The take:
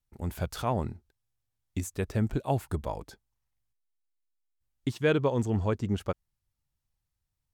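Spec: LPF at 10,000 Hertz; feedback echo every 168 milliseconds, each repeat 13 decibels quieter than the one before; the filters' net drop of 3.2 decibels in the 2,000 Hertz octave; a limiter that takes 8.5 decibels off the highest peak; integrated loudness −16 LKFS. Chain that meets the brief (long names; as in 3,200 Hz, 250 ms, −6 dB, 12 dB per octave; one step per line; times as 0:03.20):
low-pass filter 10,000 Hz
parametric band 2,000 Hz −4.5 dB
brickwall limiter −22 dBFS
repeating echo 168 ms, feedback 22%, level −13 dB
level +18 dB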